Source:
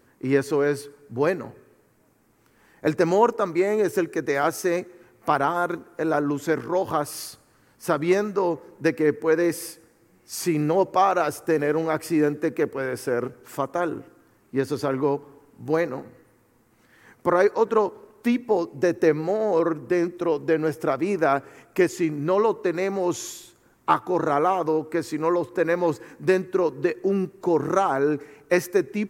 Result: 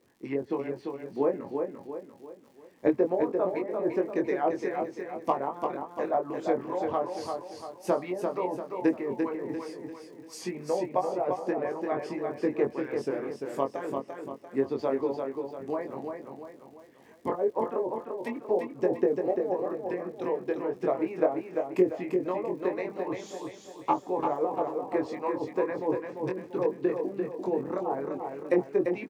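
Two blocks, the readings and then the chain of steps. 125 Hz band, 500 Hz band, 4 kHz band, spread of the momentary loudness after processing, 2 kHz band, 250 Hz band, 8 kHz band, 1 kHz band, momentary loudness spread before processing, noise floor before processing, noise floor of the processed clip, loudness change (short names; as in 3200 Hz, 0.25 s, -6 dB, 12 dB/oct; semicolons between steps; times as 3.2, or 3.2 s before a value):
-11.5 dB, -5.5 dB, -11.5 dB, 10 LU, -12.5 dB, -6.5 dB, under -15 dB, -7.0 dB, 9 LU, -61 dBFS, -53 dBFS, -6.5 dB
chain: treble ducked by the level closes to 600 Hz, closed at -15.5 dBFS; HPF 110 Hz; bell 1400 Hz -13 dB 0.42 oct; harmonic-percussive split harmonic -16 dB; high shelf 4700 Hz -10 dB; crackle 100/s -50 dBFS; doubler 22 ms -4 dB; feedback echo 0.344 s, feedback 43%, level -5 dB; gain -2 dB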